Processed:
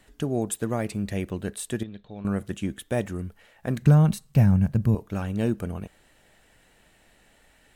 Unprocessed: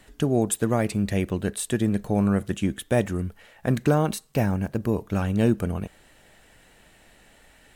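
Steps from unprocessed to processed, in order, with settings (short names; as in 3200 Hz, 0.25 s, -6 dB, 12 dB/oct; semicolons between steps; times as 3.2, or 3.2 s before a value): 1.83–2.25 ladder low-pass 3800 Hz, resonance 80%; 3.82–4.95 resonant low shelf 230 Hz +10.5 dB, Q 1.5; gain -4.5 dB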